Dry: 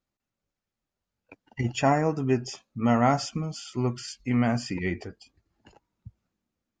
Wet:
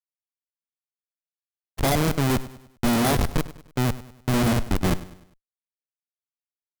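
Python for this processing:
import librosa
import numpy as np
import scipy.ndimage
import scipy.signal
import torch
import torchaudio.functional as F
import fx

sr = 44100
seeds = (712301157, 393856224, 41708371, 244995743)

p1 = fx.bit_reversed(x, sr, seeds[0], block=16)
p2 = fx.rider(p1, sr, range_db=3, speed_s=2.0)
p3 = p1 + F.gain(torch.from_numpy(p2), 1.0).numpy()
p4 = fx.schmitt(p3, sr, flips_db=-18.5)
p5 = fx.cheby_harmonics(p4, sr, harmonics=(6,), levels_db=(-7,), full_scale_db=-16.0)
p6 = p5 + fx.echo_feedback(p5, sr, ms=100, feedback_pct=44, wet_db=-16.5, dry=0)
p7 = fx.spec_freeze(p6, sr, seeds[1], at_s=0.67, hold_s=1.14)
y = F.gain(torch.from_numpy(p7), 2.5).numpy()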